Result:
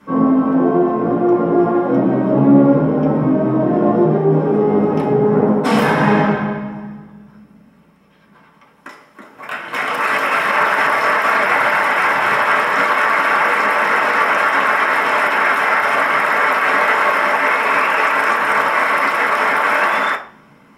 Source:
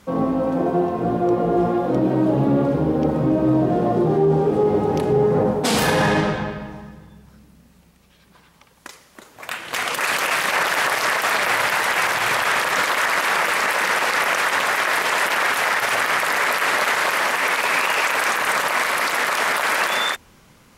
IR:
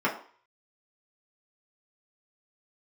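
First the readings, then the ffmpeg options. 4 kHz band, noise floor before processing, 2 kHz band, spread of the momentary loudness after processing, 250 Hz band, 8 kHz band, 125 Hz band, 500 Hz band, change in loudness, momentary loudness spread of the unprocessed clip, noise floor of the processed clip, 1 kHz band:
-4.0 dB, -53 dBFS, +4.0 dB, 3 LU, +6.5 dB, -10.0 dB, +3.0 dB, +4.0 dB, +4.5 dB, 3 LU, -49 dBFS, +6.0 dB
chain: -filter_complex "[1:a]atrim=start_sample=2205[a];[0:a][a]afir=irnorm=-1:irlink=0,volume=-8dB"

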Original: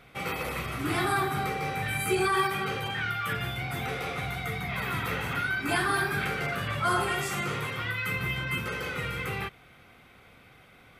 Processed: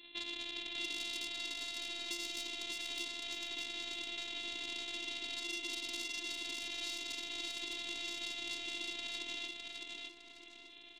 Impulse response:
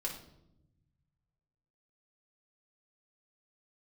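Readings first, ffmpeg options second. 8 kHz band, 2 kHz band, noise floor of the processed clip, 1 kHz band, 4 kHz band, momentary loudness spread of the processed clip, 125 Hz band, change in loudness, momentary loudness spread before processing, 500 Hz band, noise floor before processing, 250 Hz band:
-5.0 dB, -13.5 dB, -56 dBFS, -24.5 dB, 0.0 dB, 5 LU, under -35 dB, -10.0 dB, 6 LU, -20.0 dB, -55 dBFS, -17.0 dB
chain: -af "aresample=8000,acrusher=samples=13:mix=1:aa=0.000001,aresample=44100,asoftclip=type=tanh:threshold=-27dB,aexciter=amount=11.8:drive=7.4:freq=2.3k,acompressor=threshold=-31dB:ratio=10,highpass=170,afftfilt=real='hypot(re,im)*cos(PI*b)':imag='0':win_size=512:overlap=0.75,aecho=1:1:608|1216|1824|2432|3040:0.668|0.247|0.0915|0.0339|0.0125,volume=-2dB"

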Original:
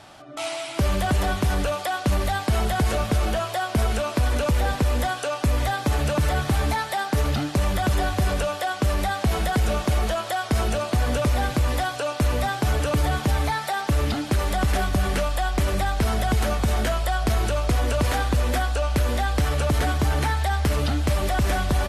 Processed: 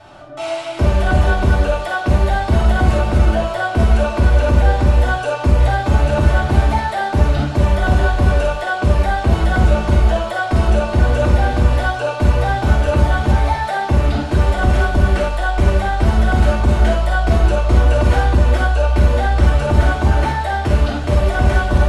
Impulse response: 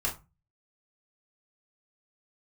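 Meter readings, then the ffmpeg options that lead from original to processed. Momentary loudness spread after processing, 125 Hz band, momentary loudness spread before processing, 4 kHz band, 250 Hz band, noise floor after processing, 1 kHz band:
4 LU, +9.0 dB, 2 LU, +1.0 dB, +6.0 dB, -24 dBFS, +6.0 dB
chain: -filter_complex "[0:a]lowpass=f=3.3k:p=1[a];[1:a]atrim=start_sample=2205,afade=t=out:st=0.14:d=0.01,atrim=end_sample=6615,asetrate=23814,aresample=44100[b];[a][b]afir=irnorm=-1:irlink=0,volume=-4.5dB"

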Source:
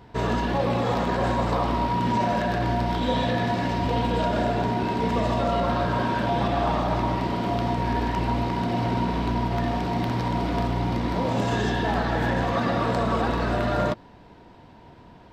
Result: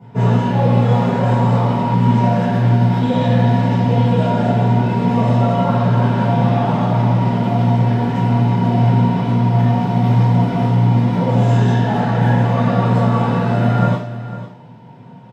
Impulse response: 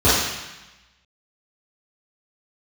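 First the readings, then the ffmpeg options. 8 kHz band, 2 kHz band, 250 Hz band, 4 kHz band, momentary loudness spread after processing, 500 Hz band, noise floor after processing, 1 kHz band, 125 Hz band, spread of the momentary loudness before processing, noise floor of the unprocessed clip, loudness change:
n/a, +2.0 dB, +10.0 dB, +1.0 dB, 2 LU, +5.5 dB, -38 dBFS, +5.0 dB, +14.5 dB, 2 LU, -49 dBFS, +9.5 dB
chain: -filter_complex "[0:a]aecho=1:1:502:0.2[a];[1:a]atrim=start_sample=2205,asetrate=88200,aresample=44100[b];[a][b]afir=irnorm=-1:irlink=0,volume=-15.5dB"

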